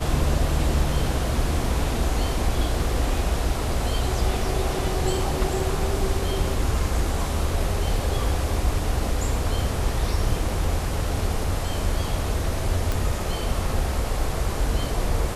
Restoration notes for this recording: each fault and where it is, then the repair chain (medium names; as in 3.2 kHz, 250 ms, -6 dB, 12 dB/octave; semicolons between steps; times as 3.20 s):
12.92 s: pop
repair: de-click